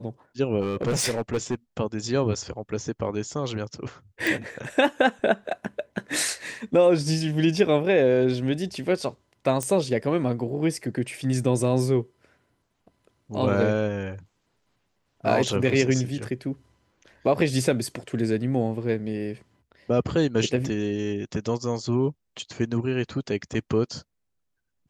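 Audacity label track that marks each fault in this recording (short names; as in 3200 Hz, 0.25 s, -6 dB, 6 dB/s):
0.610000	1.550000	clipped -20.5 dBFS
4.270000	4.270000	pop
9.630000	9.630000	pop -13 dBFS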